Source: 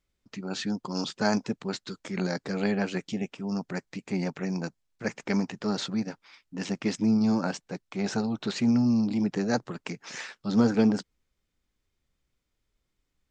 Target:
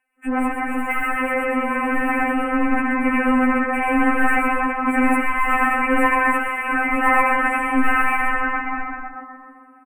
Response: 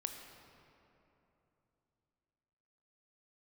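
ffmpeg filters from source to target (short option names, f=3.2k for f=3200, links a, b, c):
-filter_complex "[0:a]afwtdn=0.0251,aecho=1:1:170|340|510|680|850:0.708|0.255|0.0917|0.033|0.0119,asplit=2[a][b];[1:a]atrim=start_sample=2205,lowpass=3.1k,adelay=105[c];[b][c]afir=irnorm=-1:irlink=0,volume=-1.5dB[d];[a][d]amix=inputs=2:normalize=0,asetrate=59535,aresample=44100,asplit=2[e][f];[f]highpass=f=720:p=1,volume=42dB,asoftclip=type=tanh:threshold=-8dB[g];[e][g]amix=inputs=2:normalize=0,lowpass=f=2.5k:p=1,volume=-6dB,asuperstop=centerf=4800:order=12:qfactor=0.88,dynaudnorm=f=870:g=7:m=6dB,equalizer=f=125:t=o:w=1:g=-5,equalizer=f=250:t=o:w=1:g=-8,equalizer=f=500:t=o:w=1:g=-10,equalizer=f=2k:t=o:w=1:g=6,equalizer=f=4k:t=o:w=1:g=-10,afftfilt=real='re*3.46*eq(mod(b,12),0)':imag='im*3.46*eq(mod(b,12),0)':win_size=2048:overlap=0.75"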